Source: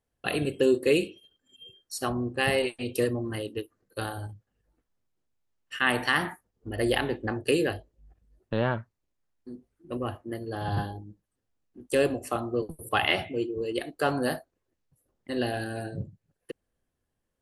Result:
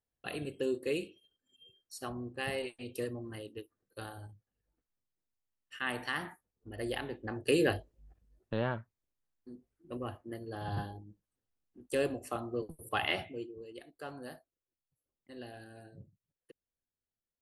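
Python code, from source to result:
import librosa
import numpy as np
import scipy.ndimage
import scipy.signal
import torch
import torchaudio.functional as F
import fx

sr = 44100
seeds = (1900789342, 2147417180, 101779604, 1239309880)

y = fx.gain(x, sr, db=fx.line((7.19, -11.0), (7.7, 0.0), (8.77, -7.5), (13.19, -7.5), (13.7, -18.0)))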